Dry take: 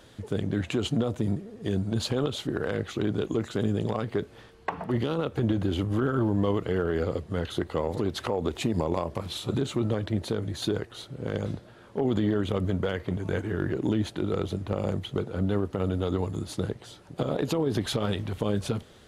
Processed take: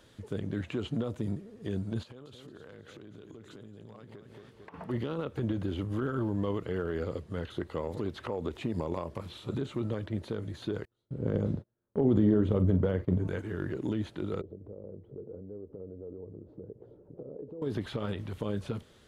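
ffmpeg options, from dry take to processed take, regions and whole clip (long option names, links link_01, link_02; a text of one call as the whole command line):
ffmpeg -i in.wav -filter_complex "[0:a]asettb=1/sr,asplit=3[link_01][link_02][link_03];[link_01]atrim=end=2.034[link_04];[link_02]atrim=start=2.03:end=4.74,asetpts=PTS-STARTPTS,afade=type=in:duration=0.004:curve=qsin,afade=type=out:start_time=2.706:duration=0.004:curve=qsin,highpass=60,aecho=1:1:224|448|672|896:0.266|0.104|0.0405|0.0158,atrim=end_sample=119511,acompressor=threshold=-39dB:ratio=8:attack=3.2:release=140:knee=1:detection=peak[link_05];[link_03]atrim=start=4.736[link_06];[link_04][link_05]acrossfade=duration=0.004:curve1=hsin:curve2=qsin[link_07];[link_07][link_06]acrossfade=duration=0.004:curve1=qsin:curve2=hsin,asettb=1/sr,asplit=3[link_08][link_09][link_10];[link_08]atrim=end=10.854[link_11];[link_09]atrim=start=10.85:end=13.28,asetpts=PTS-STARTPTS,afade=type=in:duration=0.004:curve=qsin,afade=type=out:start_time=2.426:duration=0.004:curve=qsin,tiltshelf=frequency=1100:gain=8.5,asplit=2[link_12][link_13];[link_13]adelay=43,volume=-12dB[link_14];[link_12][link_14]amix=inputs=2:normalize=0,atrim=end_sample=107163,agate=range=-33dB:threshold=-37dB:ratio=16:release=100:detection=peak[link_15];[link_10]atrim=start=13.276[link_16];[link_11][link_15]acrossfade=duration=0.004:curve1=hsin:curve2=qsin[link_17];[link_17][link_16]acrossfade=duration=0.004:curve1=qsin:curve2=hsin,asettb=1/sr,asplit=3[link_18][link_19][link_20];[link_18]atrim=end=14.414[link_21];[link_19]atrim=start=14.41:end=17.62,asetpts=PTS-STARTPTS,afade=type=in:duration=0.004:curve=qsin,afade=type=out:start_time=3.206:duration=0.004:curve=qsin,acompressor=threshold=-39dB:ratio=6:attack=3.2:release=140:knee=1:detection=peak,lowpass=frequency=460:width_type=q:width=3.1[link_22];[link_20]atrim=start=17.616[link_23];[link_21][link_22]acrossfade=duration=0.004:curve1=hsin:curve2=qsin[link_24];[link_24][link_23]acrossfade=duration=0.004:curve1=qsin:curve2=hsin,acrossover=split=3100[link_25][link_26];[link_26]acompressor=threshold=-50dB:ratio=4:attack=1:release=60[link_27];[link_25][link_27]amix=inputs=2:normalize=0,equalizer=frequency=740:width=4.6:gain=-4.5,volume=-6dB" out.wav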